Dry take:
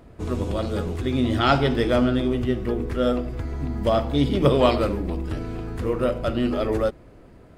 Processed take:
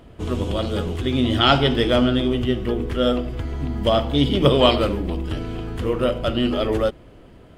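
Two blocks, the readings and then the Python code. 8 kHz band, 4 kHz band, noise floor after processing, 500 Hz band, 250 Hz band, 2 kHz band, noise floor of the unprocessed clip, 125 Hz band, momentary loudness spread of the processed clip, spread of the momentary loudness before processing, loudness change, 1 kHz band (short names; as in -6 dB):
n/a, +9.5 dB, -46 dBFS, +2.0 dB, +2.0 dB, +3.0 dB, -48 dBFS, +2.0 dB, 11 LU, 10 LU, +2.5 dB, +2.0 dB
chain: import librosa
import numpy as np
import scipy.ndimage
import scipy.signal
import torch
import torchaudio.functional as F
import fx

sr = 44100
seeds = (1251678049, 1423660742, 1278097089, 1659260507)

y = fx.peak_eq(x, sr, hz=3100.0, db=10.5, octaves=0.32)
y = y * 10.0 ** (2.0 / 20.0)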